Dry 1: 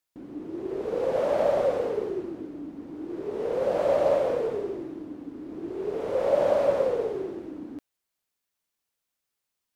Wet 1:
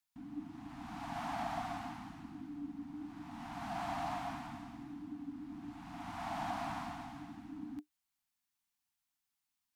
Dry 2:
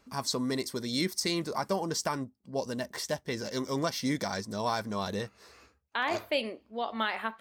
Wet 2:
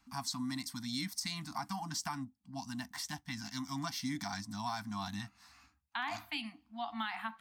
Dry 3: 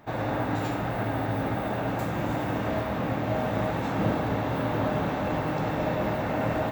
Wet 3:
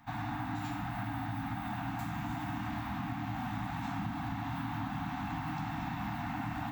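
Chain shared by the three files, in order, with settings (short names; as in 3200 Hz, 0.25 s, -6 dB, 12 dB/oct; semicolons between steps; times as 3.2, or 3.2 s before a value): Chebyshev band-stop 300–700 Hz, order 5; compressor, threshold -29 dBFS; gain -4 dB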